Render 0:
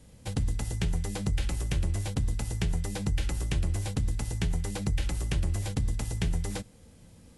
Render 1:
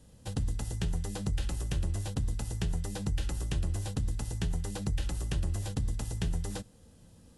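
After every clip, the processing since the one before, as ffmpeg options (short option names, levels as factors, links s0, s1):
-af "equalizer=f=2200:w=6.7:g=-10.5,volume=0.708"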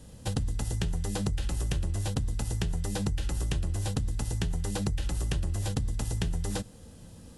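-af "acompressor=threshold=0.02:ratio=6,volume=2.51"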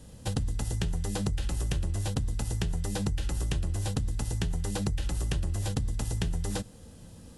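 -af anull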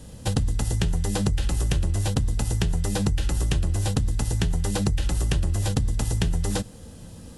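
-af "volume=2.11" -ar 44100 -c:a aac -b:a 128k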